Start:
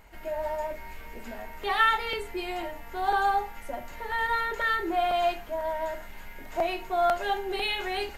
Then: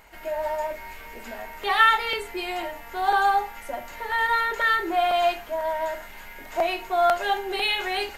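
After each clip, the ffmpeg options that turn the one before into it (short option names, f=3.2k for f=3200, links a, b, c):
-af "lowshelf=f=330:g=-9.5,volume=5.5dB"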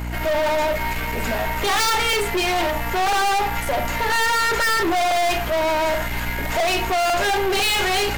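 -af "aeval=exprs='0.473*sin(PI/2*3.55*val(0)/0.473)':c=same,aeval=exprs='val(0)+0.0447*(sin(2*PI*60*n/s)+sin(2*PI*2*60*n/s)/2+sin(2*PI*3*60*n/s)/3+sin(2*PI*4*60*n/s)/4+sin(2*PI*5*60*n/s)/5)':c=same,aeval=exprs='(tanh(11.2*val(0)+0.3)-tanh(0.3))/11.2':c=same,volume=2.5dB"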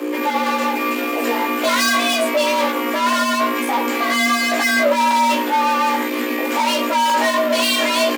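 -filter_complex "[0:a]equalizer=f=290:t=o:w=0.54:g=7.5,afreqshift=240,asplit=2[a][b];[b]adelay=17,volume=-3.5dB[c];[a][c]amix=inputs=2:normalize=0"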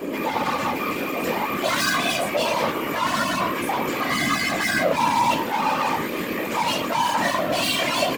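-af "afftfilt=real='hypot(re,im)*cos(2*PI*random(0))':imag='hypot(re,im)*sin(2*PI*random(1))':win_size=512:overlap=0.75,volume=1dB"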